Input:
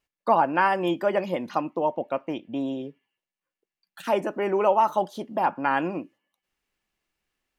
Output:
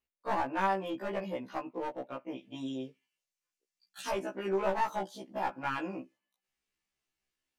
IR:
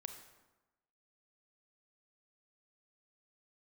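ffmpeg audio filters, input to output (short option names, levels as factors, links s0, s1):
-af "asetnsamples=n=441:p=0,asendcmd='2.38 equalizer g 14.5;4.11 equalizer g 6',equalizer=f=6300:t=o:w=2:g=-2,aeval=exprs='clip(val(0),-1,0.0841)':c=same,afftfilt=real='re*1.73*eq(mod(b,3),0)':imag='im*1.73*eq(mod(b,3),0)':win_size=2048:overlap=0.75,volume=0.447"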